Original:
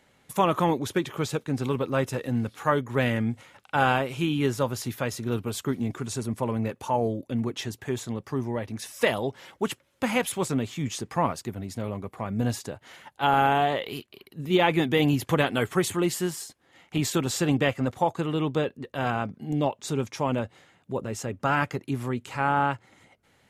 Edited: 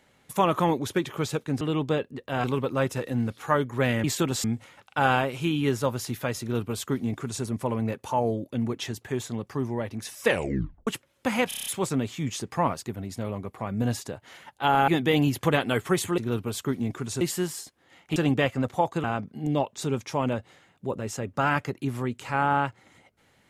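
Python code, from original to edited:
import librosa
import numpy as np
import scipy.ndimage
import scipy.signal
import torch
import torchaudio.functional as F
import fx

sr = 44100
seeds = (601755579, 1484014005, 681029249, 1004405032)

y = fx.edit(x, sr, fx.duplicate(start_s=5.18, length_s=1.03, to_s=16.04),
    fx.tape_stop(start_s=9.03, length_s=0.61),
    fx.stutter(start_s=10.25, slice_s=0.03, count=7),
    fx.cut(start_s=13.47, length_s=1.27),
    fx.move(start_s=16.99, length_s=0.4, to_s=3.21),
    fx.move(start_s=18.27, length_s=0.83, to_s=1.61), tone=tone)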